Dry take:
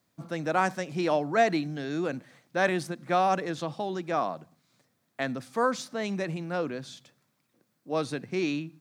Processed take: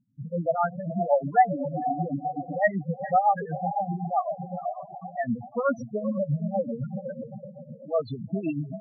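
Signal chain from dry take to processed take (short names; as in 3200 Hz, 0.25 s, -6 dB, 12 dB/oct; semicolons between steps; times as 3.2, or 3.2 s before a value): bell 350 Hz -13 dB 0.38 oct; wow and flutter 140 cents; on a send: diffused feedback echo 0.479 s, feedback 46%, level -6.5 dB; on the sum: tremolo 7.9 Hz, depth 77%; in parallel at +1.5 dB: compressor 6:1, threshold -36 dBFS, peak gain reduction 16 dB; on the sum: loudest bins only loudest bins 4; gain +6 dB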